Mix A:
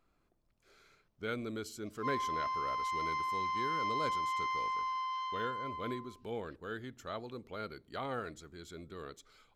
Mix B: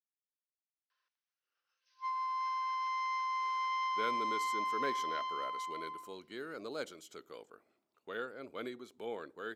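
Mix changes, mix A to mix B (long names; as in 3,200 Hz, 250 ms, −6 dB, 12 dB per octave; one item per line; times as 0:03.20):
speech: entry +2.75 s
master: add high-pass filter 300 Hz 12 dB per octave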